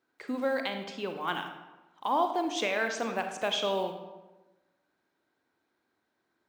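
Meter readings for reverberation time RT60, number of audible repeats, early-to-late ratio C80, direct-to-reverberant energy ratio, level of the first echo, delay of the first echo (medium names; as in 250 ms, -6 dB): 1.1 s, no echo, 9.0 dB, 5.5 dB, no echo, no echo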